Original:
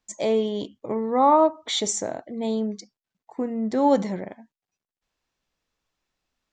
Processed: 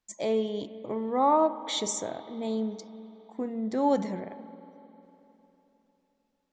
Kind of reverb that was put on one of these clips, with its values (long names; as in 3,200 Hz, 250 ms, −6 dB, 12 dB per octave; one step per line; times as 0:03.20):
spring reverb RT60 3.5 s, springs 45/50 ms, chirp 45 ms, DRR 13.5 dB
level −5.5 dB